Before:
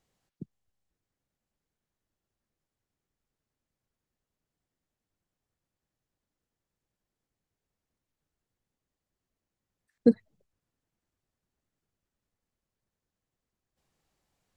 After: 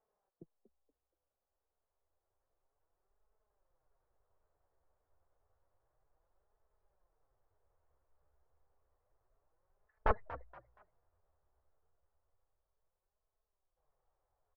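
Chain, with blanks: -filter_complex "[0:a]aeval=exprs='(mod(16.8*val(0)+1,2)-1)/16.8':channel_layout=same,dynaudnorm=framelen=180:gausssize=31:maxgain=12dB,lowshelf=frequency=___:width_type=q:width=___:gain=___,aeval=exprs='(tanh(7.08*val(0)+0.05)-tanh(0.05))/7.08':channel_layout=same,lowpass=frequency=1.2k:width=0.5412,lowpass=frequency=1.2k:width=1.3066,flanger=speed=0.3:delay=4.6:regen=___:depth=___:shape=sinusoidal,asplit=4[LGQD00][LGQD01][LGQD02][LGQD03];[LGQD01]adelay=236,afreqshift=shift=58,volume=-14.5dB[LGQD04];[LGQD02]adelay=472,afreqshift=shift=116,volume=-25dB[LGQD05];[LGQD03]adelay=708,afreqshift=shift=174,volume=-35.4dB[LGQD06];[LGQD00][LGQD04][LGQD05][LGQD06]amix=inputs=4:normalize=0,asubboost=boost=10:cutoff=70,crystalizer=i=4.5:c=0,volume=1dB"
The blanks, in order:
330, 1.5, -12.5, 38, 8.9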